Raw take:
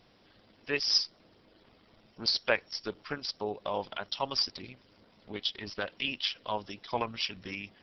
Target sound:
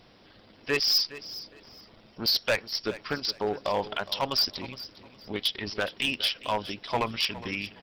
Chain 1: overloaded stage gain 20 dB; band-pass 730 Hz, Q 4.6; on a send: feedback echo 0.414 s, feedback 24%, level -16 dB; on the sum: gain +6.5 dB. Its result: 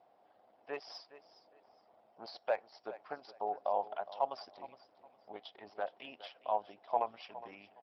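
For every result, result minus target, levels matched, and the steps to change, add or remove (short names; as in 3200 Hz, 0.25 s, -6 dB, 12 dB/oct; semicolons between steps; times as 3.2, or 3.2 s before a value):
1000 Hz band +8.5 dB; overloaded stage: distortion -7 dB
remove: band-pass 730 Hz, Q 4.6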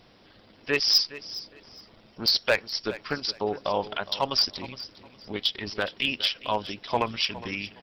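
overloaded stage: distortion -7 dB
change: overloaded stage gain 26 dB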